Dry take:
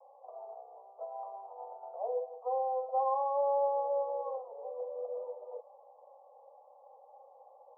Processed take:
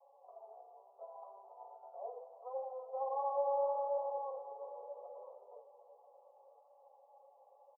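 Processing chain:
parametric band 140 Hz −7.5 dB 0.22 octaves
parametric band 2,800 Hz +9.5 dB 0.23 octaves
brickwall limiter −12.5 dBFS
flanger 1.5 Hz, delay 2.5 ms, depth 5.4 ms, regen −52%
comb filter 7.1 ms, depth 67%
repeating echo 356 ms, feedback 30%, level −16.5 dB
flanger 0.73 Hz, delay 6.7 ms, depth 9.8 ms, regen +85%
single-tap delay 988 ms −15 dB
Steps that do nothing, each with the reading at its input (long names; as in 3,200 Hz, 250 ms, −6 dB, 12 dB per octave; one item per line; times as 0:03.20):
parametric band 140 Hz: nothing at its input below 430 Hz
parametric band 2,800 Hz: nothing at its input above 1,100 Hz
brickwall limiter −12.5 dBFS: peak of its input −21.5 dBFS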